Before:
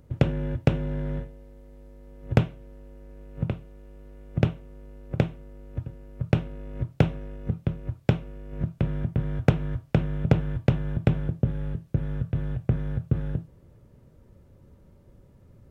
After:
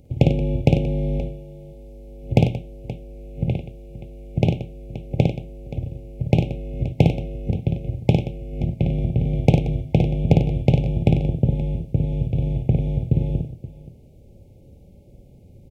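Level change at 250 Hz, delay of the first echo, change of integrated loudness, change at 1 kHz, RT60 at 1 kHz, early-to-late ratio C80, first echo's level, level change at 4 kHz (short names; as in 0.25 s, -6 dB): +6.0 dB, 55 ms, +6.0 dB, +4.5 dB, none, none, -4.0 dB, +6.0 dB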